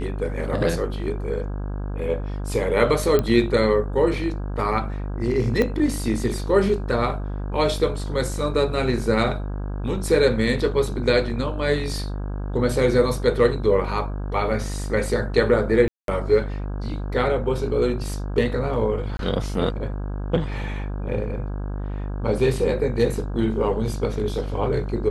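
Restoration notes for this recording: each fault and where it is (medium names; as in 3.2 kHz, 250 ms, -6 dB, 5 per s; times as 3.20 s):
buzz 50 Hz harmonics 33 -28 dBFS
3.19 s: pop -9 dBFS
5.62 s: pop -10 dBFS
15.88–16.08 s: dropout 202 ms
19.17–19.19 s: dropout 22 ms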